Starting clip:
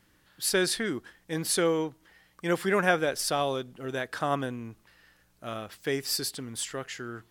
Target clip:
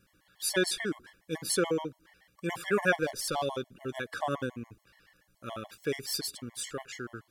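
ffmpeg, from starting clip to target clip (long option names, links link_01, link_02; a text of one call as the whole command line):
ffmpeg -i in.wav -filter_complex "[0:a]asettb=1/sr,asplit=3[link_01][link_02][link_03];[link_01]atrim=end=2.954[link_04];[link_02]atrim=start=2.95:end=3.46,asetpts=PTS-STARTPTS,afade=type=in:duration=0.004:curve=qsin,afade=type=out:start_time=0.506:duration=0.004:curve=qsin,asoftclip=type=hard:threshold=-21dB[link_05];[link_03]atrim=start=3.456[link_06];[link_04][link_05]acrossfade=duration=0.004:curve1=hsin:curve2=qsin[link_07];[link_07][link_06]acrossfade=duration=0.004:curve1=qsin:curve2=hsin,afftfilt=real='re*gt(sin(2*PI*7*pts/sr)*(1-2*mod(floor(b*sr/1024/570),2)),0)':imag='im*gt(sin(2*PI*7*pts/sr)*(1-2*mod(floor(b*sr/1024/570),2)),0)':win_size=1024:overlap=0.75" out.wav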